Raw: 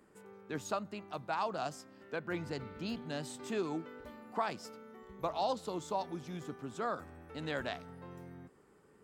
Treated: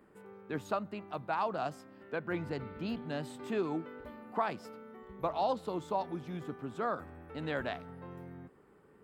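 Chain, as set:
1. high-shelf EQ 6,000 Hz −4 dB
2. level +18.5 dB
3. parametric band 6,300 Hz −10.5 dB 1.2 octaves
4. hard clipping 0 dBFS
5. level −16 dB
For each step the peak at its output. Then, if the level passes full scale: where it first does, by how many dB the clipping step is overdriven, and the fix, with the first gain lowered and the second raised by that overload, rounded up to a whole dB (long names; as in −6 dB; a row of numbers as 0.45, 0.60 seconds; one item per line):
−22.0, −3.5, −3.5, −3.5, −19.5 dBFS
no step passes full scale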